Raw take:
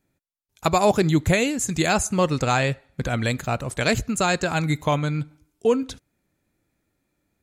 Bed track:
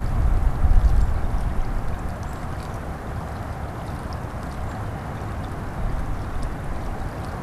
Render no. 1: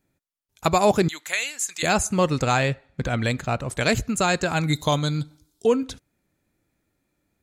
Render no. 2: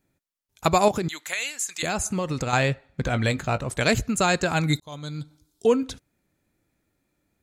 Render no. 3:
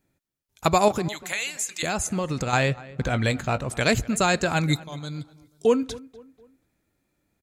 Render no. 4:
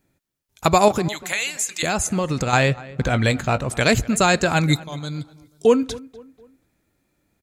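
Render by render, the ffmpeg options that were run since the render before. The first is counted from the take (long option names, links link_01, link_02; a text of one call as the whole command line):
ffmpeg -i in.wav -filter_complex "[0:a]asettb=1/sr,asplit=3[link_01][link_02][link_03];[link_01]atrim=end=1.084[link_04];[link_02]atrim=start=1.08:end=1.83,asetpts=PTS-STARTPTS,afade=type=in:duration=0.004:curve=qsin,afade=type=out:start_time=0.746:duration=0.004:curve=qsin,highpass=1400[link_05];[link_03]atrim=start=1.826[link_06];[link_04][link_05]acrossfade=duration=0.004:curve1=hsin:curve2=qsin[link_07];[link_07][link_06]acrossfade=duration=0.004:curve1=qsin:curve2=hsin,asettb=1/sr,asplit=3[link_08][link_09][link_10];[link_08]atrim=end=2.584[link_11];[link_09]atrim=start=2.58:end=3.7,asetpts=PTS-STARTPTS,afade=type=in:duration=0.004:curve=qsin,afade=type=out:start_time=1.116:duration=0.004:curve=qsin,adynamicsmooth=sensitivity=4.5:basefreq=7800[link_12];[link_10]atrim=start=3.696[link_13];[link_11][link_12]acrossfade=duration=0.004:curve1=hsin:curve2=qsin[link_14];[link_14][link_13]acrossfade=duration=0.004:curve1=qsin:curve2=hsin,asettb=1/sr,asplit=3[link_15][link_16][link_17];[link_15]atrim=end=4.734[link_18];[link_16]atrim=start=4.73:end=5.66,asetpts=PTS-STARTPTS,afade=type=in:duration=0.004:curve=qsin,afade=type=out:start_time=0.926:duration=0.004:curve=qsin,highshelf=frequency=3100:width_type=q:width=3:gain=6.5[link_19];[link_17]atrim=start=5.656[link_20];[link_18][link_19]acrossfade=duration=0.004:curve1=hsin:curve2=qsin[link_21];[link_21][link_20]acrossfade=duration=0.004:curve1=qsin:curve2=hsin" out.wav
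ffmpeg -i in.wav -filter_complex "[0:a]asettb=1/sr,asplit=3[link_01][link_02][link_03];[link_01]atrim=end=0.884[link_04];[link_02]atrim=start=0.88:end=2.53,asetpts=PTS-STARTPTS,afade=type=in:duration=0.004:curve=qsin,afade=type=out:start_time=1.646:duration=0.004:curve=qsin,acompressor=threshold=-22dB:ratio=6:attack=3.2:release=140:knee=1:detection=peak[link_05];[link_03]atrim=start=2.526[link_06];[link_04][link_05]acrossfade=duration=0.004:curve1=hsin:curve2=qsin[link_07];[link_07][link_06]acrossfade=duration=0.004:curve1=qsin:curve2=hsin,asettb=1/sr,asplit=3[link_08][link_09][link_10];[link_08]atrim=end=3.044[link_11];[link_09]atrim=start=3.04:end=3.68,asetpts=PTS-STARTPTS,afade=type=in:duration=0.004:curve=qsin,afade=type=out:start_time=0.636:duration=0.004:curve=qsin,asplit=2[link_12][link_13];[link_13]adelay=19,volume=-11.5dB[link_14];[link_12][link_14]amix=inputs=2:normalize=0,atrim=end_sample=28224[link_15];[link_10]atrim=start=3.676[link_16];[link_11][link_15]acrossfade=duration=0.004:curve1=hsin:curve2=qsin[link_17];[link_17][link_16]acrossfade=duration=0.004:curve1=qsin:curve2=hsin,asplit=2[link_18][link_19];[link_18]atrim=end=4.8,asetpts=PTS-STARTPTS,afade=type=out:start_time=4.796:duration=0.004:curve=hsin[link_20];[link_19]atrim=start=4.8,asetpts=PTS-STARTPTS,afade=type=in:duration=0.86[link_21];[link_20][link_21]concat=n=2:v=0:a=1" out.wav
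ffmpeg -i in.wav -filter_complex "[0:a]asplit=2[link_01][link_02];[link_02]adelay=244,lowpass=frequency=2300:poles=1,volume=-19.5dB,asplit=2[link_03][link_04];[link_04]adelay=244,lowpass=frequency=2300:poles=1,volume=0.41,asplit=2[link_05][link_06];[link_06]adelay=244,lowpass=frequency=2300:poles=1,volume=0.41[link_07];[link_01][link_03][link_05][link_07]amix=inputs=4:normalize=0" out.wav
ffmpeg -i in.wav -af "volume=4.5dB,alimiter=limit=-3dB:level=0:latency=1" out.wav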